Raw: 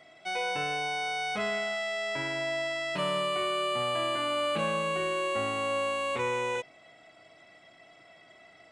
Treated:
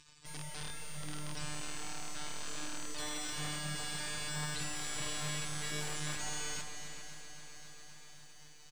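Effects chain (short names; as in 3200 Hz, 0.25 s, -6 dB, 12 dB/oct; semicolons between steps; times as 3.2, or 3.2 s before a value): spectral gate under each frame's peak -25 dB weak; tone controls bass +13 dB, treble +13 dB; in parallel at -6 dB: soft clip -37 dBFS, distortion -15 dB; on the sum: robotiser 150 Hz; wrapped overs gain 31.5 dB; air absorption 78 m; outdoor echo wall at 69 m, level -8 dB; lo-fi delay 0.266 s, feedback 80%, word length 12-bit, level -11 dB; gain +7 dB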